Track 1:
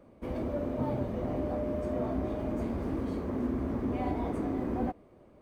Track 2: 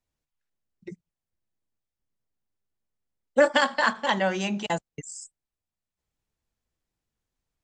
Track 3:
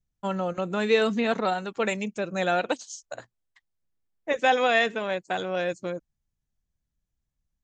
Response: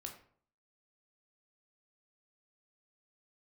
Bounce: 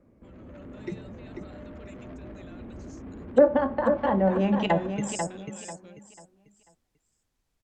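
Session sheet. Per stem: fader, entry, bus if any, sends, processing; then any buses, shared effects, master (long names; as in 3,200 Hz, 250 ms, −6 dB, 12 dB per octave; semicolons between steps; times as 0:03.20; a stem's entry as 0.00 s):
−0.5 dB, 0.00 s, bus A, no send, echo send −17.5 dB, low-pass filter 2,200 Hz 24 dB per octave; brickwall limiter −30 dBFS, peak gain reduction 10.5 dB; soft clipping −39.5 dBFS, distortion −10 dB
−4.5 dB, 0.00 s, no bus, send −4.5 dB, echo send −4.5 dB, treble cut that deepens with the level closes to 550 Hz, closed at −21.5 dBFS
−20.0 dB, 0.00 s, bus A, no send, no echo send, downward compressor, threshold −27 dBFS, peak gain reduction 11 dB
bus A: 0.0 dB, parametric band 820 Hz −9 dB 1.8 octaves; brickwall limiter −44 dBFS, peak gain reduction 8 dB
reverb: on, RT60 0.55 s, pre-delay 13 ms
echo: repeating echo 492 ms, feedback 29%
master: automatic gain control gain up to 7 dB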